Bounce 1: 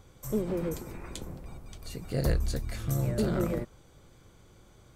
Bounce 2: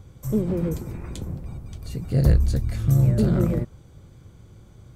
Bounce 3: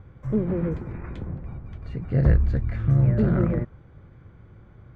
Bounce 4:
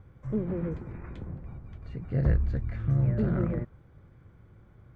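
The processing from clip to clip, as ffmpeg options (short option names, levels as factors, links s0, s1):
-af "equalizer=f=100:w=0.44:g=13"
-af "lowpass=f=1800:t=q:w=1.8,volume=0.891"
-af "volume=0.501" -ar 48000 -c:a sbc -b:a 192k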